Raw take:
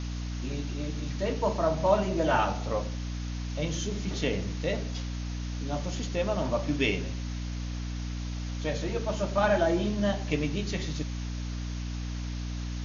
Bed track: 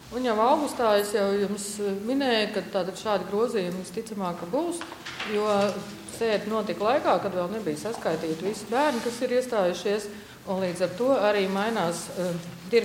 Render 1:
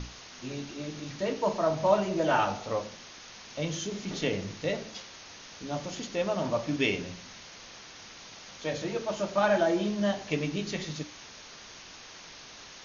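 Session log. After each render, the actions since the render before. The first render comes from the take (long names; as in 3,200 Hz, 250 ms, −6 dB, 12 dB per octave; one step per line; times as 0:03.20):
mains-hum notches 60/120/180/240/300 Hz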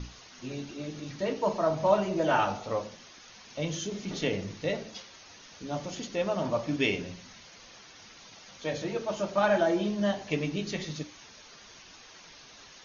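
broadband denoise 7 dB, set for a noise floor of −48 dBFS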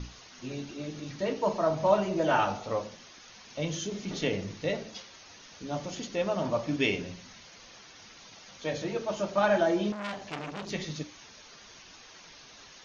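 0:09.92–0:10.71: saturating transformer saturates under 2,800 Hz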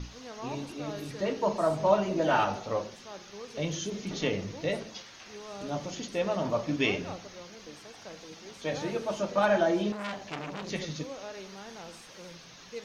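mix in bed track −19.5 dB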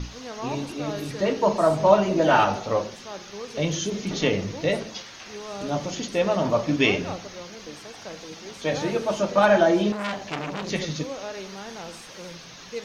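level +7 dB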